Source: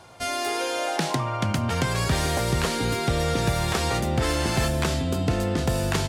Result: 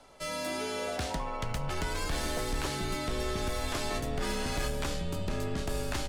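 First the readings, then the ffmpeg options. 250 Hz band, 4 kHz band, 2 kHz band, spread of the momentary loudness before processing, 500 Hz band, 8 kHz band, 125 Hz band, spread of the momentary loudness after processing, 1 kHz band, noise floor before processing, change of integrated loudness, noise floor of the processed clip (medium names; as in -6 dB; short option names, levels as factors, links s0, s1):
-10.0 dB, -8.0 dB, -8.0 dB, 2 LU, -8.0 dB, -8.0 dB, -12.5 dB, 2 LU, -9.0 dB, -29 dBFS, -9.0 dB, -36 dBFS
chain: -af "aeval=exprs='0.299*(cos(1*acos(clip(val(0)/0.299,-1,1)))-cos(1*PI/2))+0.00668*(cos(8*acos(clip(val(0)/0.299,-1,1)))-cos(8*PI/2))':c=same,asoftclip=type=hard:threshold=0.119,afreqshift=-92,volume=0.422"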